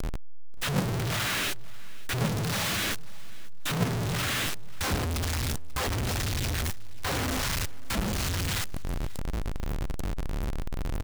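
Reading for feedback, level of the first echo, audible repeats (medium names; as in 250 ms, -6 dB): 23%, -22.0 dB, 2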